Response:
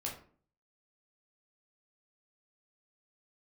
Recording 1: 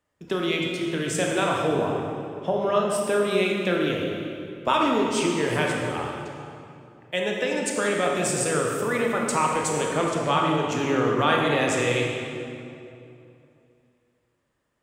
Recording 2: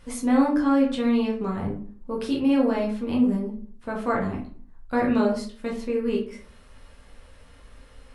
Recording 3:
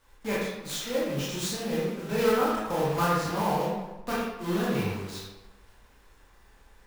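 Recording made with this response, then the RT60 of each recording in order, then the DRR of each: 2; 2.7 s, 0.45 s, 1.1 s; -1.0 dB, -2.5 dB, -7.5 dB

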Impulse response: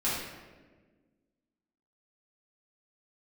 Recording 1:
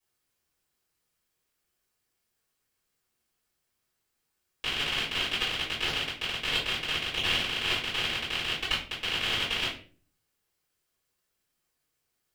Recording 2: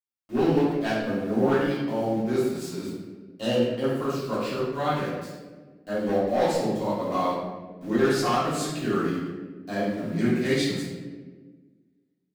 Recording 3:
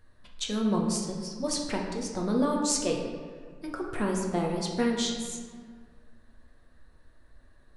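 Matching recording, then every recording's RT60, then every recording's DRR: 2; 0.40 s, 1.4 s, 1.9 s; -12.0 dB, -10.5 dB, -1.0 dB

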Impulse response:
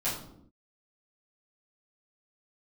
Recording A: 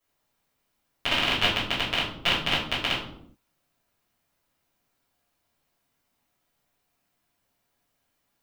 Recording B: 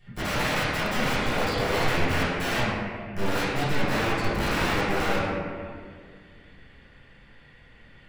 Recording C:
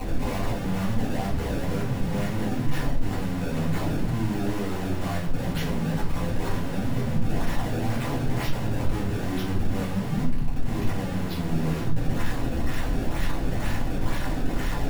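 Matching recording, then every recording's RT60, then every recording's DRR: A; 0.70 s, 2.0 s, no single decay rate; -11.5 dB, -16.0 dB, -7.5 dB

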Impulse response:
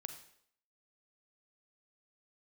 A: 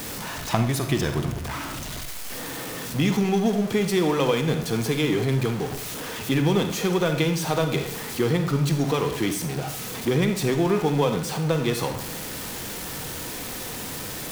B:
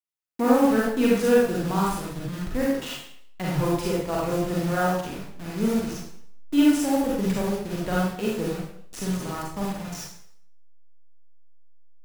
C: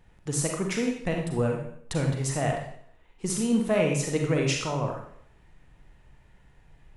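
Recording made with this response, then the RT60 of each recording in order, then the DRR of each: A; 0.65 s, 0.65 s, 0.65 s; 6.5 dB, -5.5 dB, 1.0 dB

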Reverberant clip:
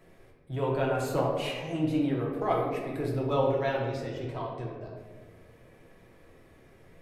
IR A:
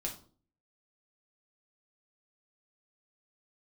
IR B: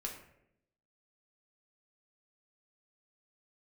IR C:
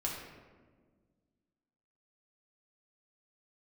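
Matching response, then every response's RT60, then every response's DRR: C; 0.45 s, 0.80 s, 1.5 s; -1.0 dB, -0.5 dB, -3.5 dB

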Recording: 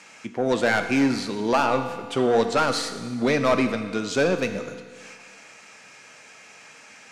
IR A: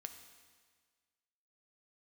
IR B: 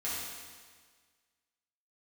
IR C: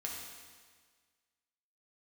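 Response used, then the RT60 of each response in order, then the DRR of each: A; 1.6 s, 1.6 s, 1.6 s; 6.5 dB, -9.5 dB, -2.5 dB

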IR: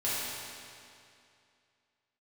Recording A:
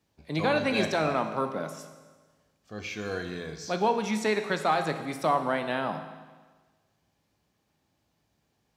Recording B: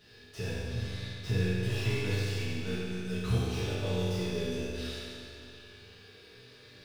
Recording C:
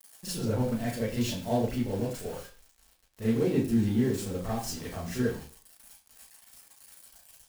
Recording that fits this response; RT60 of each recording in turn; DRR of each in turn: B; 1.4 s, 2.5 s, 0.40 s; 7.0 dB, -11.0 dB, -10.0 dB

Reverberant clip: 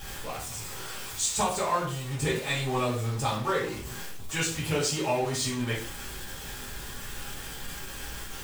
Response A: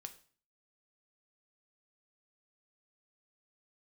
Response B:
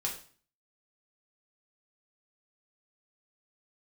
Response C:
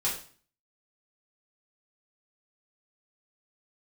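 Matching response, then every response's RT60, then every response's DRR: C; 0.45 s, 0.45 s, 0.45 s; 7.0 dB, -2.0 dB, -7.5 dB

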